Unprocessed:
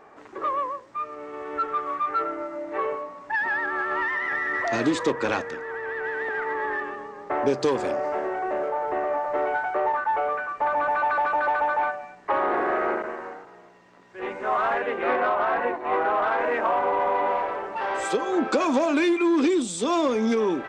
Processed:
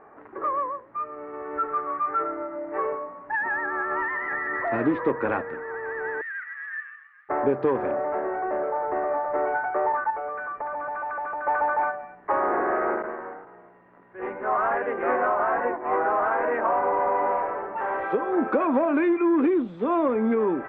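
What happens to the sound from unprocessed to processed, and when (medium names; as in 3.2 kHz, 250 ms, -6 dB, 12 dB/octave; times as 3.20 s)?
6.21–7.29 s: steep high-pass 1.5 kHz 48 dB/octave
10.10–11.47 s: compression, threshold -28 dBFS
whole clip: low-pass 1.9 kHz 24 dB/octave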